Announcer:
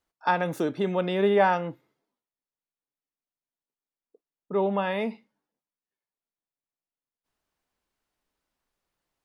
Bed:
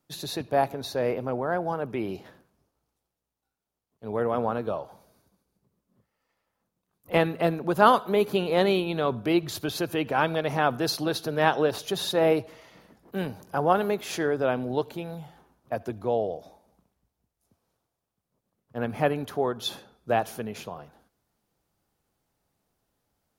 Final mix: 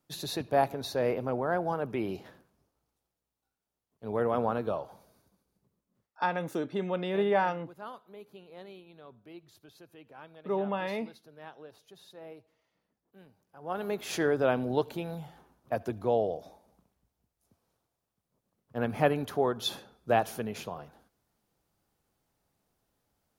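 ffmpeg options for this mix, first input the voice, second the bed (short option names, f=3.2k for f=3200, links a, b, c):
-filter_complex "[0:a]adelay=5950,volume=-5.5dB[a];[1:a]volume=22.5dB,afade=t=out:st=5.62:d=0.59:silence=0.0668344,afade=t=in:st=13.6:d=0.6:silence=0.0595662[b];[a][b]amix=inputs=2:normalize=0"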